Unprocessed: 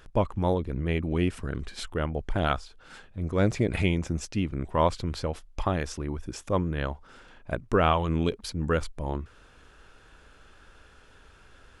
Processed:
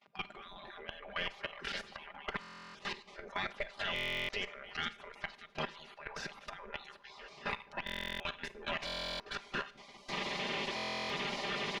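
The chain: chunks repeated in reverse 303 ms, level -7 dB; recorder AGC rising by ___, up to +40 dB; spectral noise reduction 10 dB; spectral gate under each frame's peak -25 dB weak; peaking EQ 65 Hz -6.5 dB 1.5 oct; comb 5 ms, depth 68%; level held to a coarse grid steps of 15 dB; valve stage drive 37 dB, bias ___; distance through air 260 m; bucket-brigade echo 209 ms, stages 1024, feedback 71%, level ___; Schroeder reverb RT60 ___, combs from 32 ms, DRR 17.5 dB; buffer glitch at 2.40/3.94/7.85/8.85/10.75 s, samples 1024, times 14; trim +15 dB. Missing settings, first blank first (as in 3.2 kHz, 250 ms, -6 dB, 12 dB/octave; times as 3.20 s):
41 dB/s, 0.55, -20.5 dB, 0.49 s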